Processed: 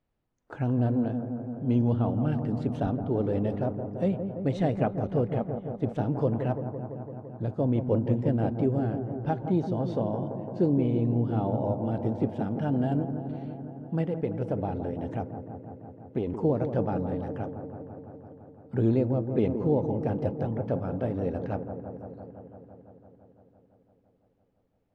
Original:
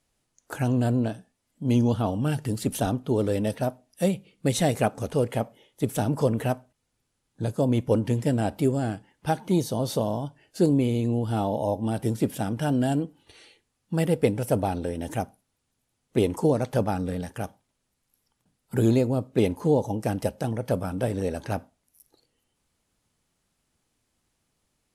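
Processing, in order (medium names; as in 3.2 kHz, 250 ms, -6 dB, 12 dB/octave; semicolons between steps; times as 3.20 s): 14.01–16.27 s: compression, threshold -22 dBFS, peak gain reduction 7 dB; tape spacing loss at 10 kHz 37 dB; feedback echo behind a low-pass 169 ms, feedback 78%, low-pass 1.1 kHz, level -8 dB; trim -2 dB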